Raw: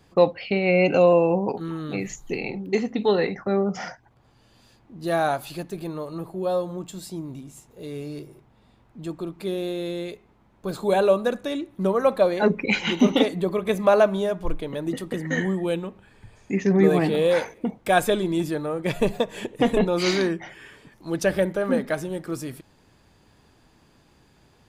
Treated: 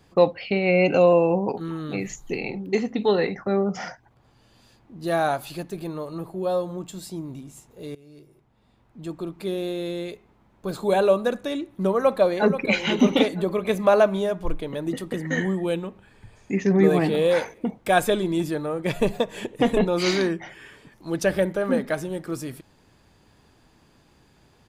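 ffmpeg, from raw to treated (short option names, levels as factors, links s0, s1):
-filter_complex "[0:a]asplit=2[s0][s1];[s1]afade=t=in:st=11.94:d=0.01,afade=t=out:st=12.79:d=0.01,aecho=0:1:480|960|1440:0.316228|0.0948683|0.0284605[s2];[s0][s2]amix=inputs=2:normalize=0,asplit=2[s3][s4];[s3]atrim=end=7.95,asetpts=PTS-STARTPTS,afade=t=out:st=7.946:d=0.004:c=hsin:silence=0.0891251[s5];[s4]atrim=start=7.95,asetpts=PTS-STARTPTS,afade=t=in:d=1.3:silence=0.0891251[s6];[s5][s6]concat=n=2:v=0:a=1"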